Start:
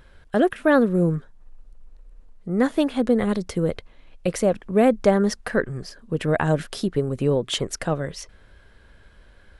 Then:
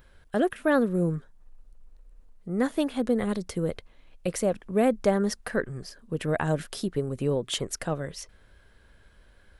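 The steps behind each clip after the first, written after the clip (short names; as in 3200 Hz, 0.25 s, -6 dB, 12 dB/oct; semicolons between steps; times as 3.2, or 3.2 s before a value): high shelf 10000 Hz +11 dB; gain -5.5 dB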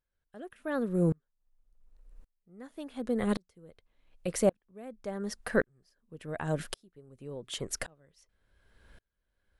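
dB-ramp tremolo swelling 0.89 Hz, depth 36 dB; gain +2 dB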